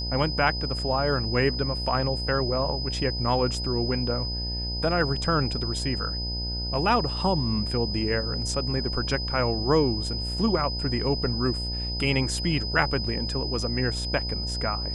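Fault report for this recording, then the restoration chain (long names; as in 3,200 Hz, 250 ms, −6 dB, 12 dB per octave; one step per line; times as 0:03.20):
mains buzz 60 Hz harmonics 16 −32 dBFS
whistle 5,000 Hz −31 dBFS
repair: hum removal 60 Hz, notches 16
notch filter 5,000 Hz, Q 30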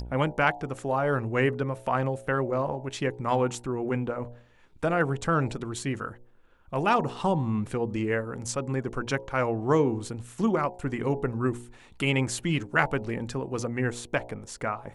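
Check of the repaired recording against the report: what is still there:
none of them is left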